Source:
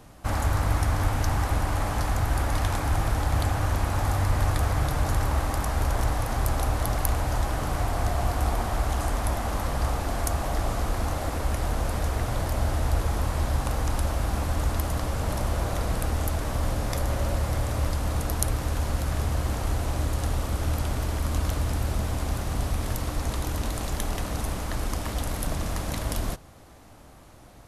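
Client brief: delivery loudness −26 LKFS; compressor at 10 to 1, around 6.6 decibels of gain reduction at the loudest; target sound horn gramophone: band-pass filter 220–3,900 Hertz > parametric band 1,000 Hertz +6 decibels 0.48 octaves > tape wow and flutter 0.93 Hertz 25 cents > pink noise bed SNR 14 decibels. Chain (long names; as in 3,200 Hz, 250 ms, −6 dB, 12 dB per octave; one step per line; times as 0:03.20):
downward compressor 10 to 1, threshold −26 dBFS
band-pass filter 220–3,900 Hz
parametric band 1,000 Hz +6 dB 0.48 octaves
tape wow and flutter 0.93 Hz 25 cents
pink noise bed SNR 14 dB
level +10 dB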